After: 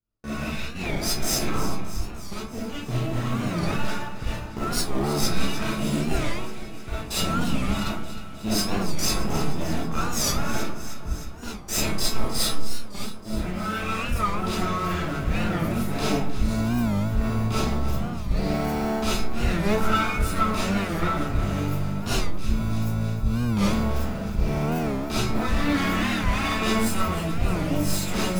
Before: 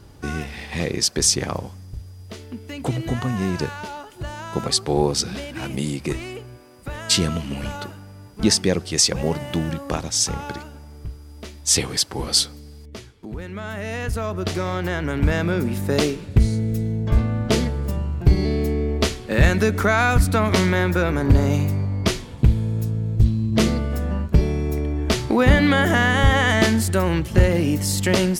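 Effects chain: minimum comb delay 0.8 ms; reverse; compressor 5:1, threshold -28 dBFS, peak gain reduction 17 dB; reverse; resonator 220 Hz, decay 0.32 s, harmonics all, mix 70%; gate -44 dBFS, range -41 dB; AGC gain up to 3.5 dB; in parallel at -10.5 dB: sample-and-hold 36×; on the sum: echo with dull and thin repeats by turns 0.155 s, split 1100 Hz, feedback 82%, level -11 dB; reverb RT60 0.45 s, pre-delay 5 ms, DRR -9 dB; record warp 45 rpm, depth 160 cents; gain +1.5 dB

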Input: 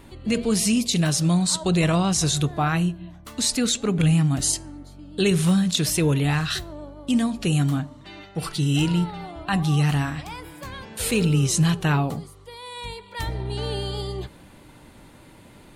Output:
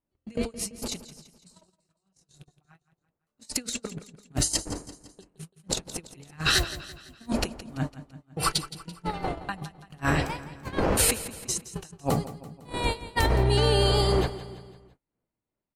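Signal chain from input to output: wind noise 490 Hz -38 dBFS; negative-ratio compressor -28 dBFS, ratio -1; 1.05–3.48 chorus 1.1 Hz, delay 19.5 ms, depth 2.8 ms; gate -26 dBFS, range -53 dB; bell 3500 Hz -7 dB 0.21 oct; feedback echo 0.168 s, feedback 48%, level -15 dB; dynamic EQ 180 Hz, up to -6 dB, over -40 dBFS, Q 0.95; gain +4 dB

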